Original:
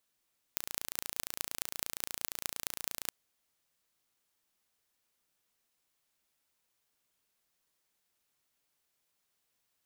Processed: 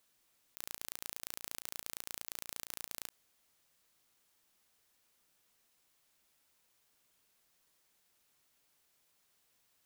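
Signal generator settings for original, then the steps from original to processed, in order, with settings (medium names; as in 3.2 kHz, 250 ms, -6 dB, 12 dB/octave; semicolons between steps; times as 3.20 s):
pulse train 28.6 per s, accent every 6, -4.5 dBFS 2.55 s
compressor with a negative ratio -46 dBFS, ratio -1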